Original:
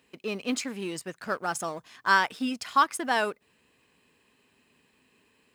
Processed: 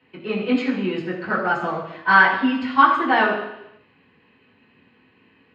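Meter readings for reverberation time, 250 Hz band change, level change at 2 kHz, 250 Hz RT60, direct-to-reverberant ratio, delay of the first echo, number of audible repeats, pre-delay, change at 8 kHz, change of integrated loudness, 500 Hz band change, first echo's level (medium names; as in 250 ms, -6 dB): 0.85 s, +11.0 dB, +10.0 dB, 0.85 s, -9.0 dB, no echo, no echo, 3 ms, under -20 dB, +9.0 dB, +8.0 dB, no echo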